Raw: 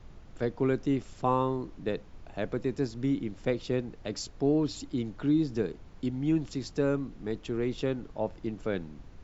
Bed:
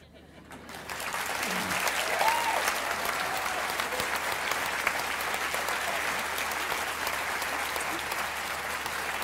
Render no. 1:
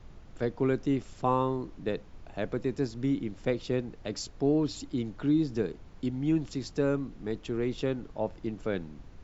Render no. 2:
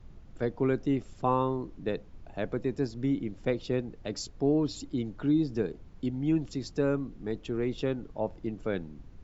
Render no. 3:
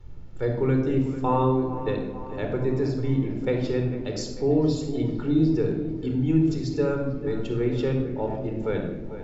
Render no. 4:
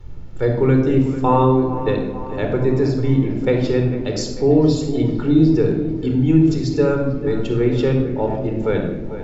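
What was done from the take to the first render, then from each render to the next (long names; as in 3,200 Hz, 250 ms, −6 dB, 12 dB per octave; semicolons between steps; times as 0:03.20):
no processing that can be heard
broadband denoise 6 dB, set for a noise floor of −51 dBFS
delay with a low-pass on its return 447 ms, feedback 56%, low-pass 2,300 Hz, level −12.5 dB; rectangular room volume 3,600 cubic metres, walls furnished, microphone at 4.3 metres
level +7.5 dB; brickwall limiter −3 dBFS, peak gain reduction 1 dB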